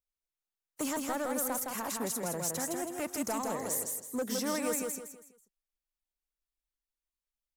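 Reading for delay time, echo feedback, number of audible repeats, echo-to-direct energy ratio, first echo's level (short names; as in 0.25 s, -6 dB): 0.163 s, 33%, 4, -3.0 dB, -3.5 dB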